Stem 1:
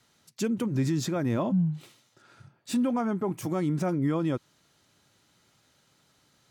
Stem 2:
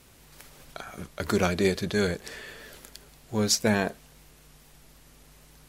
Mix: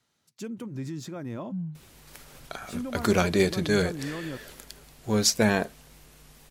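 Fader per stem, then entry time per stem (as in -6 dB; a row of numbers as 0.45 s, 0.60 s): -8.5 dB, +1.5 dB; 0.00 s, 1.75 s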